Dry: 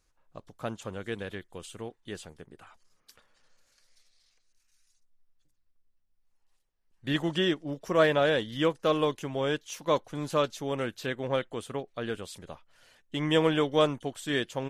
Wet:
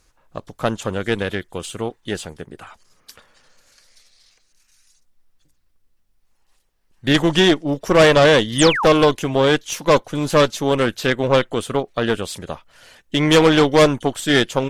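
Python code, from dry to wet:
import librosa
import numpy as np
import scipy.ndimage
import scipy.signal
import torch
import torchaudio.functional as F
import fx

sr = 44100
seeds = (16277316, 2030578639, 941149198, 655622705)

y = fx.cheby_harmonics(x, sr, harmonics=(5, 8), levels_db=(-14, -15), full_scale_db=-10.0)
y = fx.spec_paint(y, sr, seeds[0], shape='fall', start_s=8.58, length_s=0.28, low_hz=680.0, high_hz=10000.0, level_db=-29.0)
y = F.gain(torch.from_numpy(y), 7.5).numpy()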